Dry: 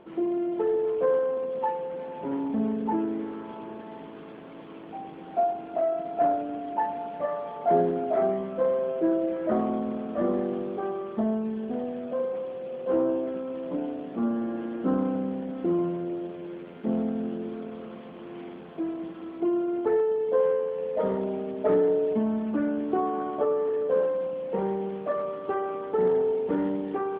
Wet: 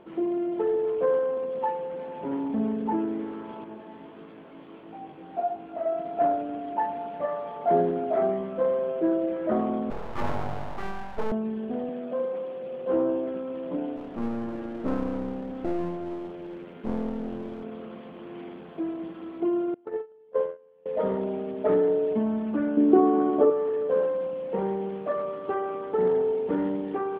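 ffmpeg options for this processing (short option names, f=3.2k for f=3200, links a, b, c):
-filter_complex "[0:a]asettb=1/sr,asplit=3[a][b][c];[a]atrim=end=3.644[d];[b]atrim=start=3.64:end=5.86,asetpts=PTS-STARTPTS,afade=t=in:d=0.004:c=qsin,afade=t=out:st=2.216:d=0.004:c=qsin,flanger=delay=17.5:depth=4.6:speed=1.5[e];[c]atrim=start=5.856[f];[d][e]acrossfade=d=0.004:c1=hsin:c2=qsin[g];[g][f]acrossfade=d=0.004:c1=qsin:c2=hsin,asettb=1/sr,asplit=3[h][i][j];[h]atrim=end=9.904[k];[i]atrim=start=9.9:end=11.32,asetpts=PTS-STARTPTS,afade=t=in:d=0.004:c=qsin,afade=t=out:st=1.416:d=0.004:c=qsin,aeval=exprs='abs(val(0))':c=same[l];[j]atrim=start=11.316[m];[k][l]acrossfade=d=0.004:c1=hsin:c2=qsin[n];[n][m]acrossfade=d=0.004:c1=qsin:c2=hsin,asettb=1/sr,asplit=3[o][p][q];[o]atrim=end=11.894[r];[p]atrim=start=11.89:end=12.63,asetpts=PTS-STARTPTS,afade=t=in:d=0.004:c=qsin,afade=t=out:st=0.736:d=0.004:c=qsin,highpass=f=140:w=0.5412,highpass=f=140:w=1.3066[s];[q]atrim=start=12.626[t];[r][s]acrossfade=d=0.004:c1=hsin:c2=qsin[u];[u][t]acrossfade=d=0.004:c1=qsin:c2=hsin,asettb=1/sr,asplit=3[v][w][x];[v]atrim=end=13.964[y];[w]atrim=start=13.96:end=17.64,asetpts=PTS-STARTPTS,afade=t=in:d=0.004:c=qsin,afade=t=out:st=3.676:d=0.004:c=qsin,aeval=exprs='clip(val(0),-1,0.015)':c=same[z];[x]atrim=start=17.636[aa];[y][z]acrossfade=d=0.004:c1=hsin:c2=qsin[ab];[ab][aa]acrossfade=d=0.004:c1=qsin:c2=hsin,asettb=1/sr,asplit=3[ac][ad][ae];[ac]atrim=end=19.744[af];[ad]atrim=start=19.74:end=20.86,asetpts=PTS-STARTPTS,afade=t=in:d=0.004:c=qsin,afade=t=out:st=1.116:d=0.004:c=qsin,agate=range=-27dB:threshold=-22dB:ratio=16:release=100:detection=peak[ag];[ae]atrim=start=20.856[ah];[af][ag]acrossfade=d=0.004:c1=hsin:c2=qsin[ai];[ai][ah]acrossfade=d=0.004:c1=qsin:c2=hsin,asettb=1/sr,asplit=3[aj][ak][al];[aj]atrim=end=22.774[am];[ak]atrim=start=22.77:end=23.5,asetpts=PTS-STARTPTS,afade=t=in:d=0.004:c=qsin,afade=t=out:st=0.726:d=0.004:c=qsin,equalizer=f=300:t=o:w=1.3:g=11.5[an];[al]atrim=start=23.496[ao];[am][an]acrossfade=d=0.004:c1=hsin:c2=qsin[ap];[ap][ao]acrossfade=d=0.004:c1=qsin:c2=hsin"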